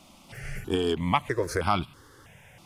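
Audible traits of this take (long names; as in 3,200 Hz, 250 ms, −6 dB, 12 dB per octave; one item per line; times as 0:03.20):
notches that jump at a steady rate 3.1 Hz 450–1,800 Hz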